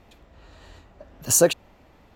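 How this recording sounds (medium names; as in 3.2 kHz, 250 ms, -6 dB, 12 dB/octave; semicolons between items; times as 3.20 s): noise floor -55 dBFS; spectral tilt -3.0 dB/octave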